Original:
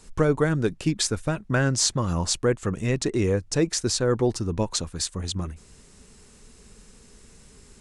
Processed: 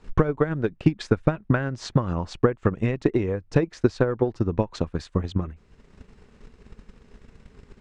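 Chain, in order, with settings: LPF 2500 Hz 12 dB/oct; compressor 4:1, threshold -24 dBFS, peak gain reduction 7.5 dB; transient shaper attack +11 dB, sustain -5 dB

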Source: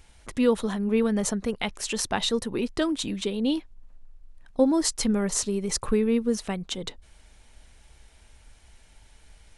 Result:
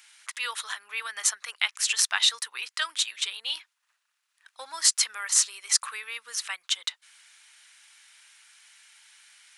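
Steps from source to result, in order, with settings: HPF 1300 Hz 24 dB/oct; gain +6.5 dB

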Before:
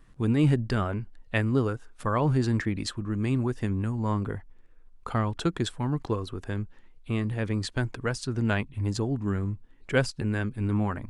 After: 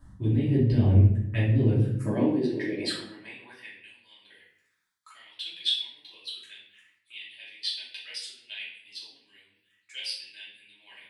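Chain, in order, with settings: low shelf 260 Hz +11 dB; envelope phaser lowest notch 390 Hz, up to 1300 Hz, full sweep at -19.5 dBFS; reverse; compressor 12:1, threshold -30 dBFS, peak gain reduction 19.5 dB; reverse; high-pass sweep 90 Hz -> 3100 Hz, 1.53–3.95; harmonic-percussive split harmonic -10 dB; shoebox room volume 140 m³, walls mixed, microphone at 2.8 m; gain +4 dB

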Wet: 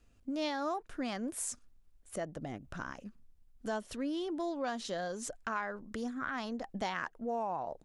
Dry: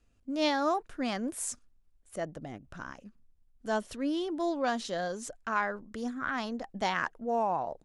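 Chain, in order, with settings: compressor 2.5:1, threshold -40 dBFS, peak gain reduction 11 dB; gain +3 dB

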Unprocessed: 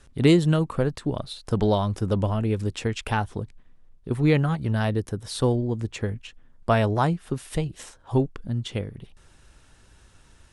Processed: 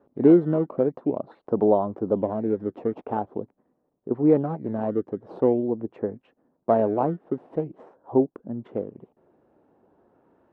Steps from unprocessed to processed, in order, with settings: in parallel at -3.5 dB: decimation with a swept rate 15×, swing 160% 0.45 Hz; on the sum: Butterworth band-pass 450 Hz, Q 0.78

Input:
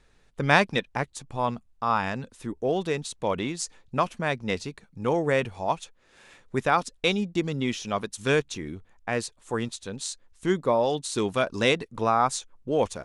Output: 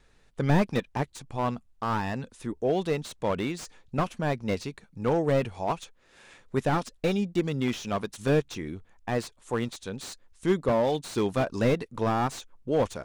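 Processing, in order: wow and flutter 29 cents; slew limiter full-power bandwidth 63 Hz

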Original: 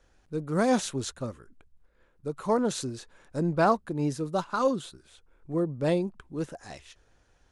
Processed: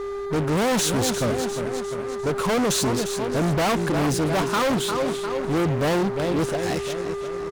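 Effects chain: feedback echo 0.351 s, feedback 48%, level -13.5 dB; whine 400 Hz -40 dBFS; fuzz box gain 38 dB, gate -47 dBFS; gain -6.5 dB

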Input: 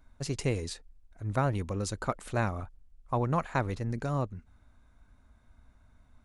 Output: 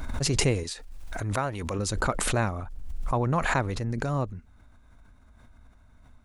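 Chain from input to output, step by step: vocal rider 2 s; 0.63–1.79 low shelf 400 Hz -10 dB; backwards sustainer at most 29 dB/s; gain +3 dB

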